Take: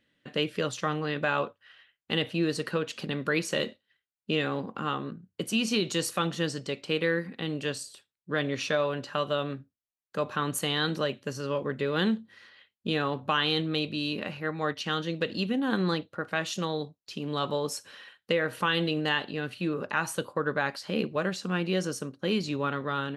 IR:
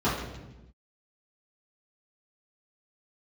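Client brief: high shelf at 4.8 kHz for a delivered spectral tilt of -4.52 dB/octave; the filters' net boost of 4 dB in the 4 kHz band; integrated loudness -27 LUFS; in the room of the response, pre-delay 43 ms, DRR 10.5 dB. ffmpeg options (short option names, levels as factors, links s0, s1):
-filter_complex "[0:a]equalizer=f=4000:t=o:g=7,highshelf=f=4800:g=-3.5,asplit=2[s0][s1];[1:a]atrim=start_sample=2205,adelay=43[s2];[s1][s2]afir=irnorm=-1:irlink=0,volume=0.0596[s3];[s0][s3]amix=inputs=2:normalize=0,volume=1.19"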